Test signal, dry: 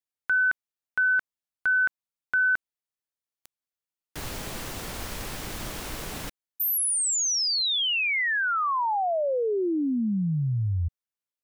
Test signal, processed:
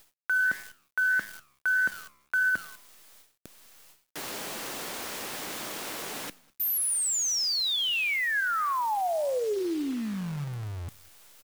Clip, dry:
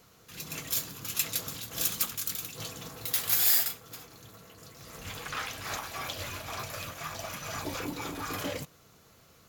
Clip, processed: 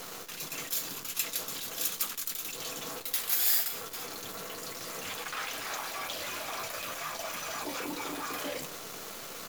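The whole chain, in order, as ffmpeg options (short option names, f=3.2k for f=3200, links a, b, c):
-af "highpass=280,areverse,acompressor=mode=upward:threshold=-26dB:ratio=4:attack=0.27:release=152:knee=2.83:detection=peak,areverse,aecho=1:1:202:0.075,acontrast=59,flanger=delay=9.8:depth=5.1:regen=89:speed=1.6:shape=sinusoidal,acrusher=bits=7:dc=4:mix=0:aa=0.000001,volume=-4dB"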